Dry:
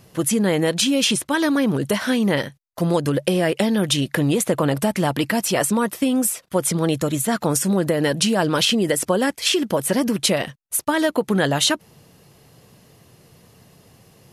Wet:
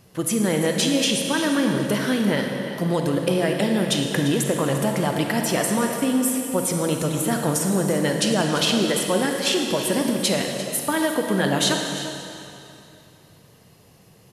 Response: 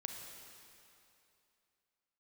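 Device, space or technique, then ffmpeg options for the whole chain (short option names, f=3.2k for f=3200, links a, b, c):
cave: -filter_complex "[0:a]aecho=1:1:346:0.2[a];[1:a]atrim=start_sample=2205[b];[a][b]afir=irnorm=-1:irlink=0"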